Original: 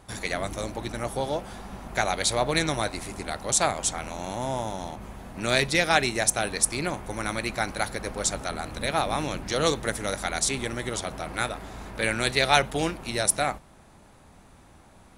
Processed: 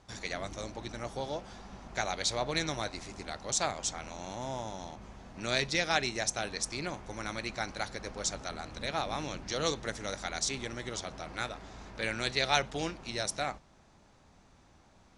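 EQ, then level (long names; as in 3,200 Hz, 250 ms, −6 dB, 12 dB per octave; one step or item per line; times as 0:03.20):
transistor ladder low-pass 7,100 Hz, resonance 40%
0.0 dB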